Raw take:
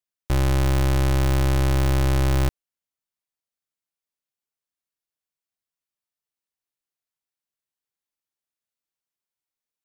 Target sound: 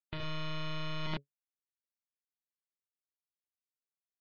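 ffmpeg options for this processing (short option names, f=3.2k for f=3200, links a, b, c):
-filter_complex "[0:a]acrossover=split=610|5800[a][b][c];[a]aecho=1:1:4.4:0.84[d];[b]acrusher=samples=11:mix=1:aa=0.000001[e];[c]asoftclip=type=tanh:threshold=-32.5dB[f];[d][e][f]amix=inputs=3:normalize=0,aeval=exprs='0.282*(cos(1*acos(clip(val(0)/0.282,-1,1)))-cos(1*PI/2))+0.0631*(cos(6*acos(clip(val(0)/0.282,-1,1)))-cos(6*PI/2))+0.0316*(cos(7*acos(clip(val(0)/0.282,-1,1)))-cos(7*PI/2))':c=same,lowshelf=f=340:g=-3.5,bandreject=f=60:t=h:w=6,bandreject=f=120:t=h:w=6,bandreject=f=180:t=h:w=6,bandreject=f=240:t=h:w=6,aecho=1:1:113.7|169.1|204.1|242:0.355|0.891|0.282|0.631,asetrate=103194,aresample=44100,areverse,acompressor=threshold=-25dB:ratio=20,areverse,highshelf=f=2.4k:g=10,acrossover=split=3900[g][h];[h]acompressor=threshold=-48dB:ratio=4:attack=1:release=60[i];[g][i]amix=inputs=2:normalize=0,afftdn=nr=24:nf=-41,volume=-7dB"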